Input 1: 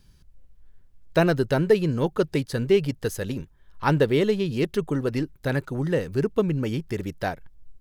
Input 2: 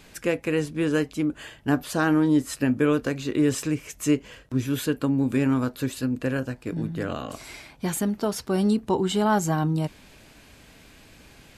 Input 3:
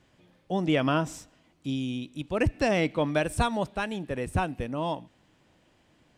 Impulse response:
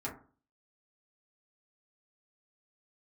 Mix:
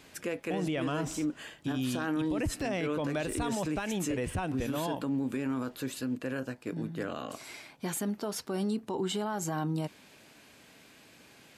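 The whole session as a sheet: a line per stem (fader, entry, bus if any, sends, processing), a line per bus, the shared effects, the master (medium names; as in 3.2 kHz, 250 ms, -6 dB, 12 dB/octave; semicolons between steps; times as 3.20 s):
mute
-4.0 dB, 0.00 s, no send, Bessel high-pass 190 Hz, order 2
+1.5 dB, 0.00 s, no send, none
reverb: none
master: peak limiter -24 dBFS, peak gain reduction 14 dB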